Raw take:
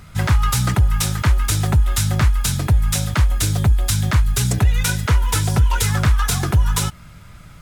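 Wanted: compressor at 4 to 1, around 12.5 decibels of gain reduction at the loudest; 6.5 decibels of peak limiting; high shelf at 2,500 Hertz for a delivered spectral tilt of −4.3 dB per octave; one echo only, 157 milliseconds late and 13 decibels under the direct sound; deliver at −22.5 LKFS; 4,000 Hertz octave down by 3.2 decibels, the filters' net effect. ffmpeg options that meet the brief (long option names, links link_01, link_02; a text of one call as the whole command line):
ffmpeg -i in.wav -af "highshelf=frequency=2500:gain=3.5,equalizer=frequency=4000:width_type=o:gain=-7.5,acompressor=threshold=-26dB:ratio=4,alimiter=limit=-21dB:level=0:latency=1,aecho=1:1:157:0.224,volume=7.5dB" out.wav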